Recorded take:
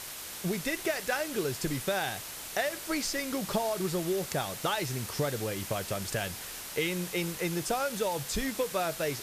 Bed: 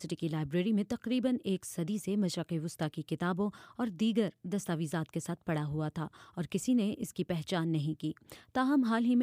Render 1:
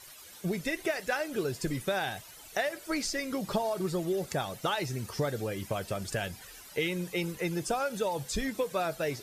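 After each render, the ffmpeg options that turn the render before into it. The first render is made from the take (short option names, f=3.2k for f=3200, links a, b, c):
-af "afftdn=nr=14:nf=-42"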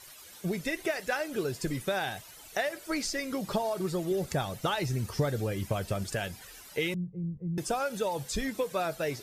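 -filter_complex "[0:a]asettb=1/sr,asplit=3[a][b][c];[a]atrim=end=4.114[d];[b]atrim=start=4.11:end=6.04,asetpts=PTS-STARTPTS,afade=t=in:d=0.004:c=qsin,afade=t=out:st=1.926:d=0.004:c=qsin,lowshelf=f=140:g=9.5[e];[c]atrim=start=6.036[f];[d][e]acrossfade=d=0.004:c1=hsin:c2=qsin[g];[g][f]acrossfade=d=0.004:c1=qsin:c2=hsin,asettb=1/sr,asplit=3[h][i][j];[h]atrim=end=6.944[k];[i]atrim=start=6.94:end=7.58,asetpts=PTS-STARTPTS,afade=t=in:d=0.004:c=qsin,afade=t=out:st=0.636:d=0.004:c=qsin,lowpass=f=150:t=q:w=1.8[l];[j]atrim=start=7.576[m];[k][l]acrossfade=d=0.004:c1=hsin:c2=qsin[n];[n][m]acrossfade=d=0.004:c1=qsin:c2=hsin"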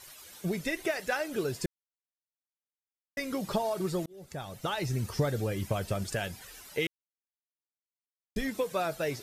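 -filter_complex "[0:a]asplit=6[a][b][c][d][e][f];[a]atrim=end=1.66,asetpts=PTS-STARTPTS,afade=t=out:st=1.656:d=0.004:c=hsin[g];[b]atrim=start=1.66:end=3.17,asetpts=PTS-STARTPTS,volume=0[h];[c]atrim=start=3.17:end=4.06,asetpts=PTS-STARTPTS,afade=t=in:d=0.004:c=hsin,afade=t=out:st=0.886:d=0.004:c=hsin[i];[d]atrim=start=4.06:end=6.87,asetpts=PTS-STARTPTS,afade=t=in:d=0.9,afade=t=out:st=2.806:d=0.004:c=hsin[j];[e]atrim=start=6.87:end=8.36,asetpts=PTS-STARTPTS,volume=0[k];[f]atrim=start=8.36,asetpts=PTS-STARTPTS,afade=t=in:d=0.004:c=hsin[l];[g][h][i][j][k][l]concat=n=6:v=0:a=1"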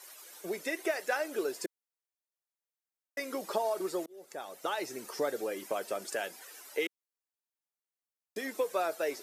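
-af "highpass=f=320:w=0.5412,highpass=f=320:w=1.3066,equalizer=f=3.4k:t=o:w=1.2:g=-4.5"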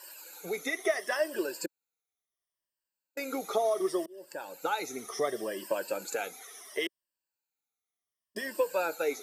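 -af "afftfilt=real='re*pow(10,14/40*sin(2*PI*(1.3*log(max(b,1)*sr/1024/100)/log(2)-(-0.7)*(pts-256)/sr)))':imag='im*pow(10,14/40*sin(2*PI*(1.3*log(max(b,1)*sr/1024/100)/log(2)-(-0.7)*(pts-256)/sr)))':win_size=1024:overlap=0.75"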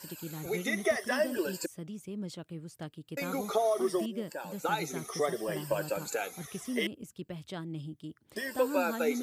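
-filter_complex "[1:a]volume=-7.5dB[a];[0:a][a]amix=inputs=2:normalize=0"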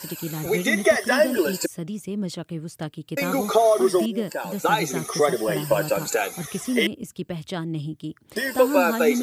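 -af "volume=10.5dB"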